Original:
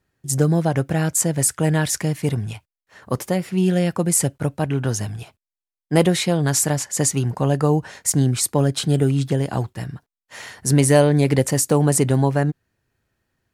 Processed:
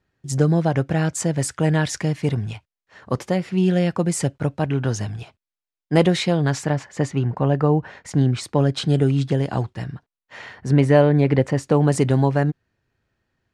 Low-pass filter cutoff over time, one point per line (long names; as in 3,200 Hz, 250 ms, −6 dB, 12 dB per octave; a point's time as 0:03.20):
0:06.28 5,400 Hz
0:06.78 2,500 Hz
0:07.94 2,500 Hz
0:08.92 5,400 Hz
0:09.75 5,400 Hz
0:10.69 2,500 Hz
0:11.56 2,500 Hz
0:12.01 5,300 Hz